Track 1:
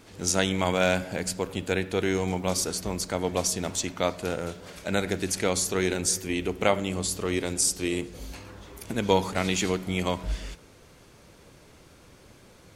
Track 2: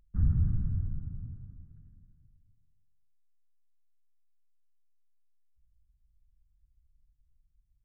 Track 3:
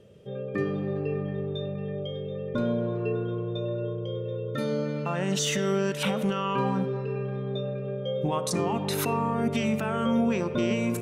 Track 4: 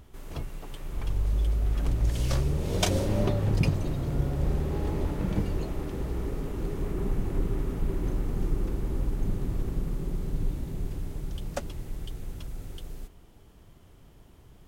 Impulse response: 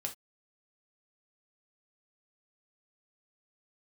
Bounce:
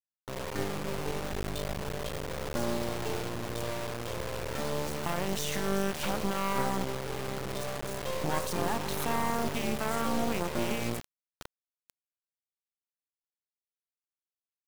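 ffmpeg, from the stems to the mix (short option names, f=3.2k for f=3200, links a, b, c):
-filter_complex "[0:a]asoftclip=type=tanh:threshold=-7dB,adelay=2300,volume=-20dB[a];[1:a]acompressor=threshold=-35dB:ratio=6,adelay=1500,volume=-10dB[b];[2:a]equalizer=f=840:w=1:g=7,volume=-4dB,asplit=2[c][d];[d]volume=-19.5dB[e];[3:a]volume=-14.5dB,afade=t=out:st=1.29:d=0.77:silence=0.473151[f];[e]aecho=0:1:149:1[g];[a][b][c][f][g]amix=inputs=5:normalize=0,equalizer=f=69:t=o:w=0.57:g=10.5,acrusher=bits=3:dc=4:mix=0:aa=0.000001"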